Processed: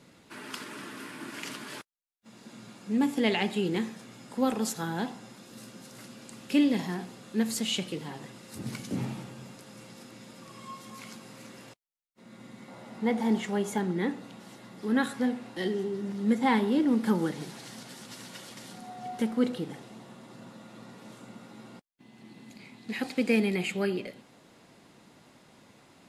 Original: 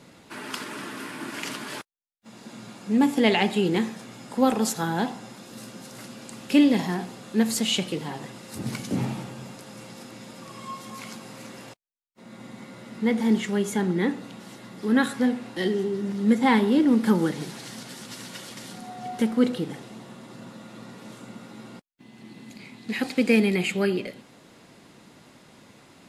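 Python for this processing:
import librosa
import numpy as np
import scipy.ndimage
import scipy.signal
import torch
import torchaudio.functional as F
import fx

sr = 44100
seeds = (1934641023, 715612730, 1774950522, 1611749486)

y = fx.peak_eq(x, sr, hz=770.0, db=fx.steps((0.0, -2.5), (12.68, 9.0), (13.78, 2.0)), octaves=0.86)
y = y * librosa.db_to_amplitude(-5.5)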